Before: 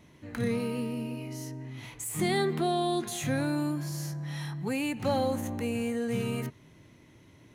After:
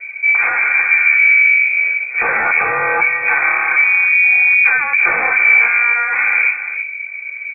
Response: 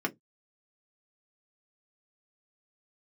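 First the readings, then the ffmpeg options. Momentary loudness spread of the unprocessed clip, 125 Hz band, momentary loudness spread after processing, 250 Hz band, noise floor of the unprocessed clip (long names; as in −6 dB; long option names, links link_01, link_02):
11 LU, below −10 dB, 7 LU, below −10 dB, −57 dBFS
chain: -filter_complex "[0:a]equalizer=frequency=330:width=4.9:gain=7.5,bandreject=frequency=920:width=5.8,acrossover=split=120|1000[link_01][link_02][link_03];[link_02]aeval=exprs='0.112*sin(PI/2*5.01*val(0)/0.112)':channel_layout=same[link_04];[link_01][link_04][link_03]amix=inputs=3:normalize=0,aeval=exprs='0.178*(cos(1*acos(clip(val(0)/0.178,-1,1)))-cos(1*PI/2))+0.0398*(cos(2*acos(clip(val(0)/0.178,-1,1)))-cos(2*PI/2))':channel_layout=same,asplit=2[link_05][link_06];[link_06]adelay=326.5,volume=-10dB,highshelf=frequency=4000:gain=-7.35[link_07];[link_05][link_07]amix=inputs=2:normalize=0[link_08];[1:a]atrim=start_sample=2205,asetrate=42336,aresample=44100[link_09];[link_08][link_09]afir=irnorm=-1:irlink=0,lowpass=frequency=2200:width_type=q:width=0.5098,lowpass=frequency=2200:width_type=q:width=0.6013,lowpass=frequency=2200:width_type=q:width=0.9,lowpass=frequency=2200:width_type=q:width=2.563,afreqshift=-2600,volume=-1.5dB"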